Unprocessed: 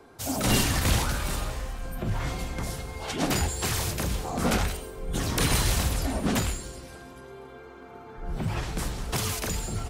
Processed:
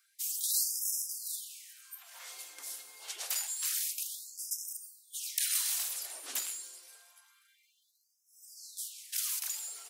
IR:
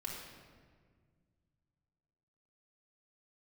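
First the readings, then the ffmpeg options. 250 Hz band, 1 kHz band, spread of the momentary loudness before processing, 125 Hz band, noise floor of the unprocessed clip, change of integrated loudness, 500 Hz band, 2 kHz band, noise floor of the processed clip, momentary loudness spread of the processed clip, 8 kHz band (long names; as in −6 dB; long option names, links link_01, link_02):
below −40 dB, −23.5 dB, 21 LU, below −40 dB, −46 dBFS, −5.5 dB, −30.0 dB, −15.5 dB, −73 dBFS, 17 LU, −1.0 dB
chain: -af "aderivative,afftfilt=real='re*gte(b*sr/1024,240*pow(5100/240,0.5+0.5*sin(2*PI*0.27*pts/sr)))':imag='im*gte(b*sr/1024,240*pow(5100/240,0.5+0.5*sin(2*PI*0.27*pts/sr)))':win_size=1024:overlap=0.75,volume=-1.5dB"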